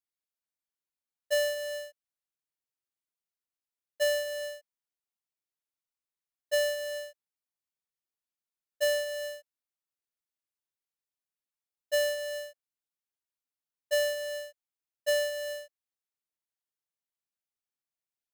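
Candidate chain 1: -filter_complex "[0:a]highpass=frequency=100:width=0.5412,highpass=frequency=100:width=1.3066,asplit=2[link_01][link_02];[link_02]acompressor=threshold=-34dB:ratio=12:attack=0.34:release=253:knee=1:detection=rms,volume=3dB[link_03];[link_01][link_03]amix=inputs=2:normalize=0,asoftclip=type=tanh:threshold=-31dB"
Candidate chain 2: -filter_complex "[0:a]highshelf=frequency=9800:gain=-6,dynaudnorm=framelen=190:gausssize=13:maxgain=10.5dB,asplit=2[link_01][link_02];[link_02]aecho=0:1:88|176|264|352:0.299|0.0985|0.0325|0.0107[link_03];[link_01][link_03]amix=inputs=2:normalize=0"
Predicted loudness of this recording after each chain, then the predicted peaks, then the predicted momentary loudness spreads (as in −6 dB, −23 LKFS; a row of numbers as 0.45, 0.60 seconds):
−35.0, −21.5 LKFS; −31.0, −13.0 dBFS; 9, 16 LU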